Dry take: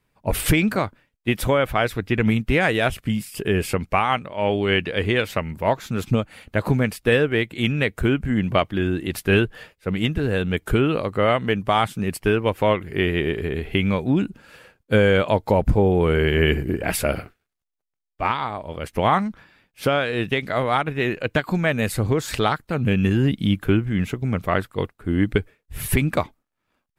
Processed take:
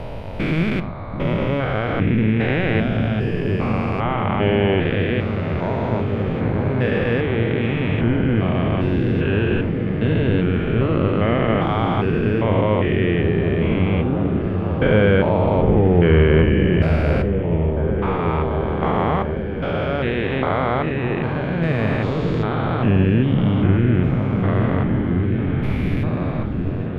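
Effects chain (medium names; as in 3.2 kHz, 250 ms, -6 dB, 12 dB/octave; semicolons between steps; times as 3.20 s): spectrogram pixelated in time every 400 ms; distance through air 250 m; delay with an opening low-pass 738 ms, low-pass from 200 Hz, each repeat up 1 oct, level -3 dB; on a send at -11 dB: reverberation RT60 0.55 s, pre-delay 11 ms; on the sum: trim +5 dB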